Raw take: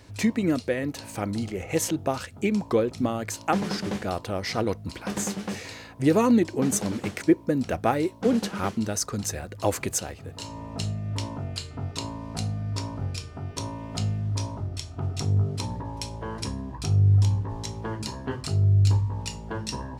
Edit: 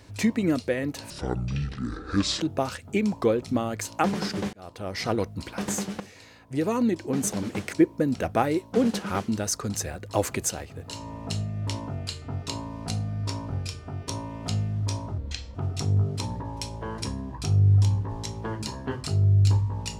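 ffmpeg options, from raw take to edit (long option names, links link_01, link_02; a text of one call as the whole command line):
ffmpeg -i in.wav -filter_complex "[0:a]asplit=7[link_01][link_02][link_03][link_04][link_05][link_06][link_07];[link_01]atrim=end=1.104[link_08];[link_02]atrim=start=1.1:end=1.9,asetpts=PTS-STARTPTS,asetrate=26901,aresample=44100,atrim=end_sample=57836,asetpts=PTS-STARTPTS[link_09];[link_03]atrim=start=1.896:end=4.02,asetpts=PTS-STARTPTS,afade=type=out:start_time=2.12:duration=0.004:curve=hsin[link_10];[link_04]atrim=start=4.02:end=5.49,asetpts=PTS-STARTPTS,afade=type=in:duration=0.52,afade=type=out:start_time=1.466:duration=0.004:curve=hsin:silence=0.223872[link_11];[link_05]atrim=start=5.49:end=14.674,asetpts=PTS-STARTPTS,afade=type=in:duration=1.72:silence=0.223872[link_12];[link_06]atrim=start=14.67:end=14.95,asetpts=PTS-STARTPTS,asetrate=33516,aresample=44100,atrim=end_sample=16247,asetpts=PTS-STARTPTS[link_13];[link_07]atrim=start=14.946[link_14];[link_08][link_09]acrossfade=duration=0.004:curve1=hsin:curve2=hsin[link_15];[link_10][link_11][link_12]concat=n=3:v=0:a=1[link_16];[link_15][link_16]acrossfade=duration=0.004:curve1=hsin:curve2=hsin[link_17];[link_17][link_13]acrossfade=duration=0.004:curve1=hsin:curve2=hsin[link_18];[link_18][link_14]acrossfade=duration=0.004:curve1=hsin:curve2=hsin" out.wav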